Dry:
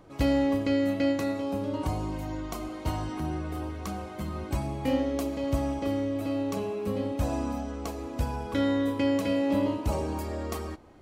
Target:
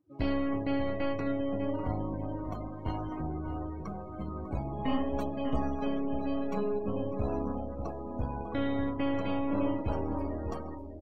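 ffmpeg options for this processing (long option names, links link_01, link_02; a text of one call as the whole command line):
ffmpeg -i in.wav -filter_complex "[0:a]highpass=frequency=52:width=0.5412,highpass=frequency=52:width=1.3066,asoftclip=type=tanh:threshold=-21dB,aeval=exprs='0.0891*(cos(1*acos(clip(val(0)/0.0891,-1,1)))-cos(1*PI/2))+0.0316*(cos(2*acos(clip(val(0)/0.0891,-1,1)))-cos(2*PI/2))':channel_layout=same,asettb=1/sr,asplit=3[link_01][link_02][link_03];[link_01]atrim=end=4.734[link_04];[link_02]atrim=start=4.73:end=6.79,asetpts=PTS-STARTPTS,afade=type=in:duration=0.004:curve=qsin,afade=type=out:start_time=2.056:duration=0.004:curve=qsin,aecho=1:1:4.8:0.84,atrim=end_sample=90846[link_05];[link_03]atrim=start=6.786[link_06];[link_04][link_05]acrossfade=duration=0.004:curve1=hsin:curve2=qsin[link_07];[link_07][link_06]acrossfade=duration=0.004:curve1=qsin:curve2=hsin,aecho=1:1:597|1194|1791|2388:0.398|0.127|0.0408|0.013,afftdn=noise_reduction=29:noise_floor=-39,adynamicequalizer=threshold=0.00316:dfrequency=3300:dqfactor=0.7:tfrequency=3300:tqfactor=0.7:attack=5:release=100:ratio=0.375:range=2:mode=cutabove:tftype=highshelf,volume=-3dB" out.wav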